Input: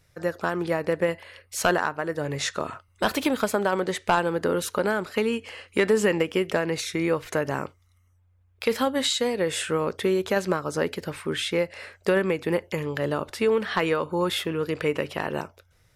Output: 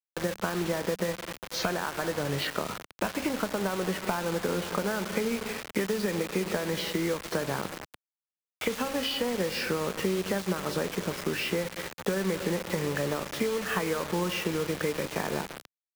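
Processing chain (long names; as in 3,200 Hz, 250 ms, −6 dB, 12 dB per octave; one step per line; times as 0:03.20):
hearing-aid frequency compression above 1,800 Hz 1.5 to 1
0:02.47–0:04.85: low-pass filter 2,900 Hz 24 dB per octave
convolution reverb RT60 2.7 s, pre-delay 8 ms, DRR 12.5 dB
floating-point word with a short mantissa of 2 bits
downward compressor 10 to 1, threshold −26 dBFS, peak gain reduction 10.5 dB
hum removal 269.3 Hz, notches 16
bit-depth reduction 6 bits, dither none
dynamic equaliser 190 Hz, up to +7 dB, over −53 dBFS, Q 6.2
multiband upward and downward compressor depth 40%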